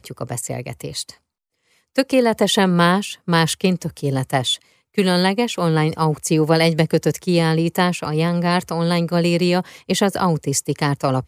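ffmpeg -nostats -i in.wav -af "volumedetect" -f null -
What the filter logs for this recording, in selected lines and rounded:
mean_volume: -19.2 dB
max_volume: -2.8 dB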